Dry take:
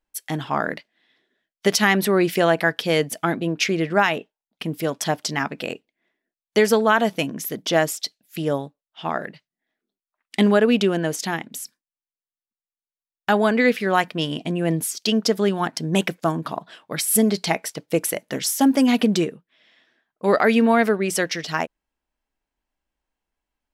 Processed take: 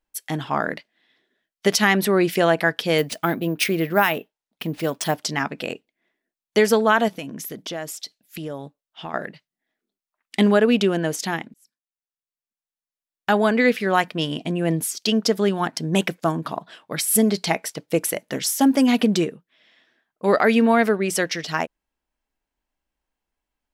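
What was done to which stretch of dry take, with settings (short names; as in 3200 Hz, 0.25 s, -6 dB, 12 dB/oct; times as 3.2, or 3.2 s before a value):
2.98–5.16 careless resampling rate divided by 3×, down none, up hold
7.08–9.14 compressor 3:1, threshold -30 dBFS
11.54–13.62 fade in equal-power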